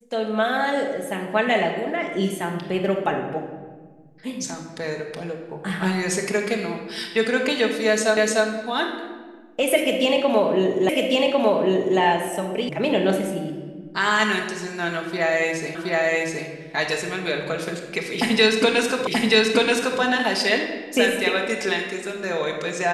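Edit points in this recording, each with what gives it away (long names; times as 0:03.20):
0:08.17: the same again, the last 0.3 s
0:10.89: the same again, the last 1.1 s
0:12.69: cut off before it has died away
0:15.75: the same again, the last 0.72 s
0:19.07: the same again, the last 0.93 s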